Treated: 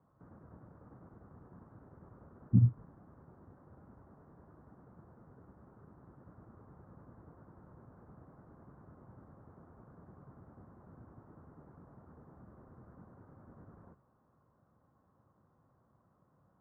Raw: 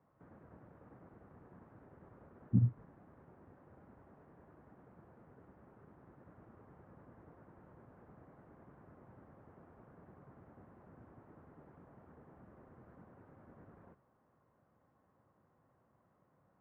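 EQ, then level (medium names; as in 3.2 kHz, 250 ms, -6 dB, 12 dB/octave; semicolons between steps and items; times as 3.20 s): resonant low-pass 1.3 kHz, resonance Q 1.9; bass shelf 320 Hz +10.5 dB; -4.5 dB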